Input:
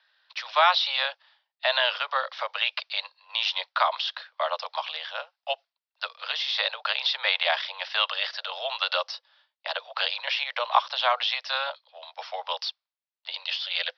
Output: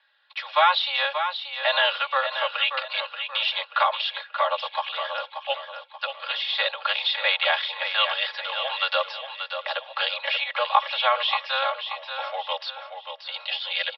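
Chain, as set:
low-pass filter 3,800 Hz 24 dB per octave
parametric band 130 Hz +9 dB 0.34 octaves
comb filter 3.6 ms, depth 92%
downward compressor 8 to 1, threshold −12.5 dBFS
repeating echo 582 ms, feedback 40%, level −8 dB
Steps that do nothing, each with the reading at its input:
parametric band 130 Hz: nothing at its input below 400 Hz

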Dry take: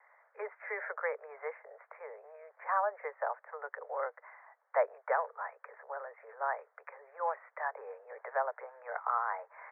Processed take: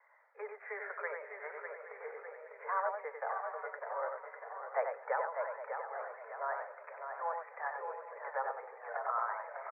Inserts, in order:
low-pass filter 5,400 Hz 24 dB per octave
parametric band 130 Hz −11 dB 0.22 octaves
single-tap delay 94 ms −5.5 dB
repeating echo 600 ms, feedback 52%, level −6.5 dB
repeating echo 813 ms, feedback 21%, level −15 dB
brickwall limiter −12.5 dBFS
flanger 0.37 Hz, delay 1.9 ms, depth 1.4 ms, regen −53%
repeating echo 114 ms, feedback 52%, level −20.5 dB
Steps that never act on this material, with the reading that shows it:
low-pass filter 5,400 Hz: nothing at its input above 2,300 Hz
parametric band 130 Hz: nothing at its input below 380 Hz
brickwall limiter −12.5 dBFS: peak of its input −17.0 dBFS

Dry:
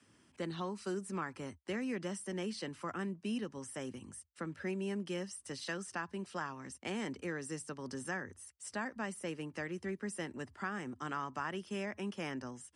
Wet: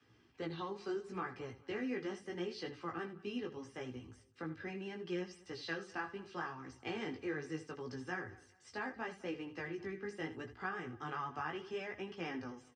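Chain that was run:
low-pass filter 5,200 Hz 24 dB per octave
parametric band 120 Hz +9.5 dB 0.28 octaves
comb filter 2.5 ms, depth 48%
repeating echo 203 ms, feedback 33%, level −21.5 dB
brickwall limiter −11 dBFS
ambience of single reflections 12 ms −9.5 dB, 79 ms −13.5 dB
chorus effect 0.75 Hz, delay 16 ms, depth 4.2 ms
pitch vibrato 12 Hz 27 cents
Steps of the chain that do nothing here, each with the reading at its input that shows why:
brickwall limiter −11 dBFS: peak of its input −24.5 dBFS

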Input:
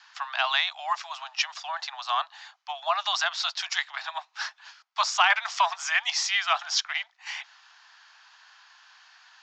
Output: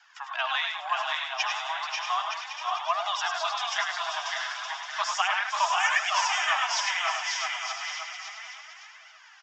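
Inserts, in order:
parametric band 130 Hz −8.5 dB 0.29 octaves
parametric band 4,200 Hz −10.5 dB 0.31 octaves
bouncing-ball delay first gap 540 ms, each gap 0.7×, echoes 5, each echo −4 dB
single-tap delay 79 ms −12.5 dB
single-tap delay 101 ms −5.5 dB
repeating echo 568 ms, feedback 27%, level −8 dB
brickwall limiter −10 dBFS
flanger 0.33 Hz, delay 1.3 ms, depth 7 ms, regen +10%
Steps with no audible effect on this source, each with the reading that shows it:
parametric band 130 Hz: nothing at its input below 570 Hz

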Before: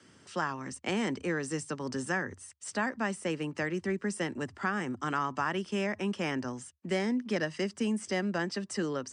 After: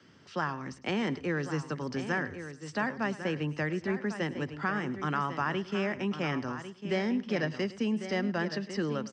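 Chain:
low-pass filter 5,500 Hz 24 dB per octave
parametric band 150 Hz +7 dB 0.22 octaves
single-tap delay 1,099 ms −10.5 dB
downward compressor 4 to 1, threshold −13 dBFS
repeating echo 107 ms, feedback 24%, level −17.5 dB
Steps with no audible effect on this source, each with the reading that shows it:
downward compressor, threshold −13 dBFS: peak of its input −17.0 dBFS

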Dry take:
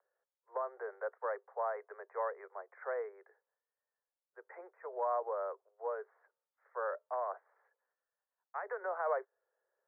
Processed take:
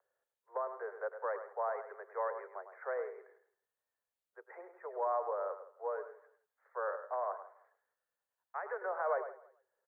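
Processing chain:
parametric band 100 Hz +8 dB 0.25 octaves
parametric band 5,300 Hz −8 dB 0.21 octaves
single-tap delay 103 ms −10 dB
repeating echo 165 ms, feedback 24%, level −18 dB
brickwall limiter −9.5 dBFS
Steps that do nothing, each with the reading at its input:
parametric band 100 Hz: nothing at its input below 340 Hz
parametric band 5,300 Hz: nothing at its input above 1,900 Hz
brickwall limiter −9.5 dBFS: peak of its input −23.0 dBFS

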